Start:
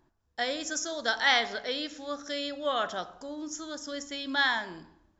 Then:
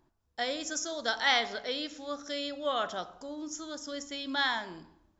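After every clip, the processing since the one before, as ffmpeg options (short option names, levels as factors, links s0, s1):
-af "equalizer=f=1700:w=4.8:g=-4,volume=0.841"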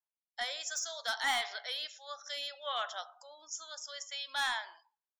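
-filter_complex "[0:a]acrossover=split=1400[s0][s1];[s0]highpass=f=770:w=0.5412,highpass=f=770:w=1.3066[s2];[s1]asoftclip=type=hard:threshold=0.0282[s3];[s2][s3]amix=inputs=2:normalize=0,afftdn=nr=24:nf=-55"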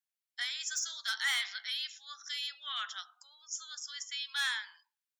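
-af "highpass=f=1400:w=0.5412,highpass=f=1400:w=1.3066,volume=1.26"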